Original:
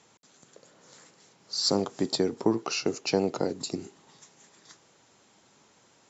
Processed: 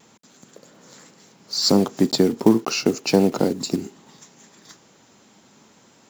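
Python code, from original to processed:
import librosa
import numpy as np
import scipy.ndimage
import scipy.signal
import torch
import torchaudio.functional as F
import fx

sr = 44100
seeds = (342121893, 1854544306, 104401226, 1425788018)

y = fx.block_float(x, sr, bits=5)
y = fx.peak_eq(y, sr, hz=220.0, db=7.5, octaves=0.89)
y = fx.vibrato(y, sr, rate_hz=0.36, depth_cents=9.7)
y = F.gain(torch.from_numpy(y), 6.0).numpy()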